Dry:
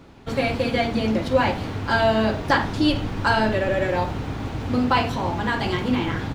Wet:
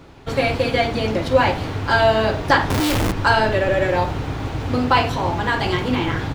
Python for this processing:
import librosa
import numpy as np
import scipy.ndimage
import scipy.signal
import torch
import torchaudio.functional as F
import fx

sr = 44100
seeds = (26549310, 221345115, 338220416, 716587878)

y = fx.peak_eq(x, sr, hz=220.0, db=-9.0, octaves=0.33)
y = fx.schmitt(y, sr, flips_db=-34.5, at=(2.7, 3.12))
y = y * librosa.db_to_amplitude(4.0)